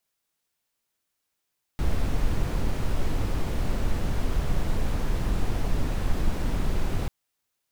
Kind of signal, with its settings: noise brown, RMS -23 dBFS 5.29 s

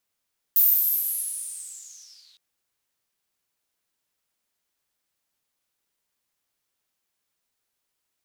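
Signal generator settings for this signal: swept filtered noise white, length 1.81 s bandpass, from 15000 Hz, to 3700 Hz, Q 9.8, linear, gain ramp -38.5 dB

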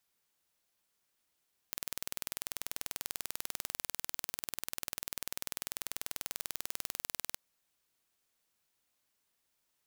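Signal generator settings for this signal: pulse train 20.3/s, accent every 0, -9 dBFS 5.66 s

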